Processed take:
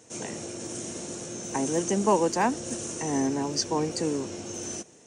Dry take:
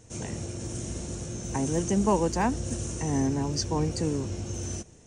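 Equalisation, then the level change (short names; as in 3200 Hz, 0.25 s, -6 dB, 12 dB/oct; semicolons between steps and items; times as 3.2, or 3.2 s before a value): HPF 260 Hz 12 dB/oct; +3.0 dB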